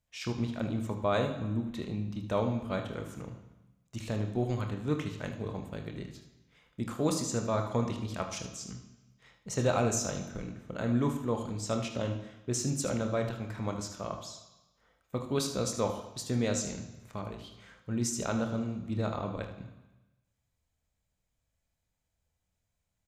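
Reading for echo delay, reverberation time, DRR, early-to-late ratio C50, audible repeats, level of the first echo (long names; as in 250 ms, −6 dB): 76 ms, 1.0 s, 4.0 dB, 7.5 dB, 1, −12.0 dB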